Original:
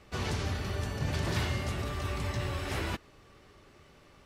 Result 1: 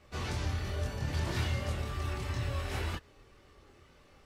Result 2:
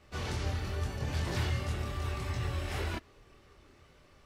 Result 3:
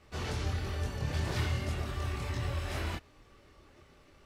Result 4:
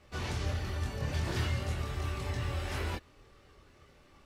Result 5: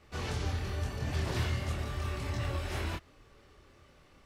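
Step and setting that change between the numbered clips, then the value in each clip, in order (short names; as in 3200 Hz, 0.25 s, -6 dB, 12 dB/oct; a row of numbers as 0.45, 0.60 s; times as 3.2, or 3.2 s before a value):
chorus, rate: 0.2, 0.7, 1.1, 0.32, 1.7 Hz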